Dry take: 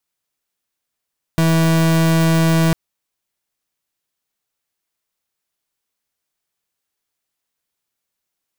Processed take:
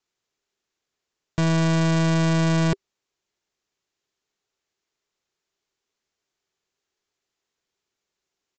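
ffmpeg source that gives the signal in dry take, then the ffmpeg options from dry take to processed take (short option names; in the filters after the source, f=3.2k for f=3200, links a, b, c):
-f lavfi -i "aevalsrc='0.2*(2*lt(mod(163*t,1),0.38)-1)':d=1.35:s=44100"
-af "equalizer=f=390:w=4:g=9.5,aresample=16000,asoftclip=type=hard:threshold=-19.5dB,aresample=44100"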